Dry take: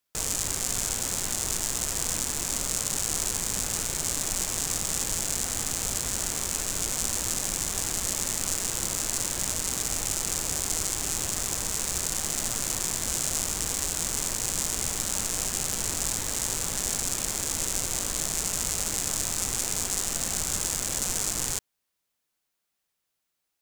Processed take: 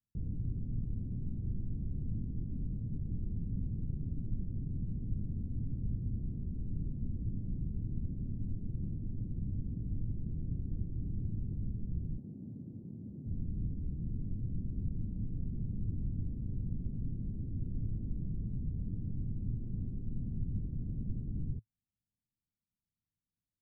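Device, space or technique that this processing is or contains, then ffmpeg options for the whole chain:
the neighbour's flat through the wall: -filter_complex "[0:a]lowpass=frequency=230:width=0.5412,lowpass=frequency=230:width=1.3066,equalizer=frequency=110:width_type=o:width=0.45:gain=5,asettb=1/sr,asplit=3[link_01][link_02][link_03];[link_01]atrim=end=12.184[link_04];[link_02]atrim=start=12.18:end=13.26,asetpts=PTS-STARTPTS,afade=type=in:duration=0.004:curve=qsin,afade=type=out:start_time=1.076:duration=0.004:curve=qsin,highpass=190[link_05];[link_03]atrim=start=13.256[link_06];[link_04][link_05]acrossfade=duration=0.004:curve1=hsin:curve2=qsin[link_07];[link_07][link_06]acrossfade=duration=0.004:curve1=qsin:curve2=hsin,volume=2.5dB"

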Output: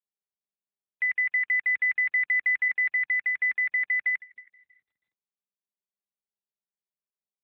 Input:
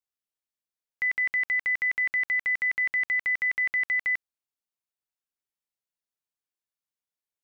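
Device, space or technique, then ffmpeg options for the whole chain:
mobile call with aggressive noise cancelling: -filter_complex "[0:a]asettb=1/sr,asplit=3[link_01][link_02][link_03];[link_01]atrim=end=2.684[link_04];[link_02]atrim=start=2.68:end=4.14,asetpts=PTS-STARTPTS,afade=type=in:duration=0.004:curve=qsin,afade=type=out:start_time=1.456:duration=0.004:curve=qsin,adynamicequalizer=threshold=0.00708:dfrequency=2800:dqfactor=1.8:tfrequency=2800:tqfactor=1.8:attack=5:release=100:ratio=0.375:range=1.5:mode=cutabove:tftype=bell[link_05];[link_03]atrim=start=4.136[link_06];[link_04][link_05]acrossfade=duration=0.004:curve1=hsin:curve2=qsin[link_07];[link_07][link_06]acrossfade=duration=0.004:curve1=qsin:curve2=hsin,highpass=frequency=130:width=0.5412,highpass=frequency=130:width=1.3066,asplit=2[link_08][link_09];[link_09]adelay=320,lowpass=frequency=2200:poles=1,volume=-16dB,asplit=2[link_10][link_11];[link_11]adelay=320,lowpass=frequency=2200:poles=1,volume=0.32,asplit=2[link_12][link_13];[link_13]adelay=320,lowpass=frequency=2200:poles=1,volume=0.32[link_14];[link_08][link_10][link_12][link_14]amix=inputs=4:normalize=0,afftdn=noise_reduction=21:noise_floor=-47,volume=2dB" -ar 8000 -c:a libopencore_amrnb -b:a 12200

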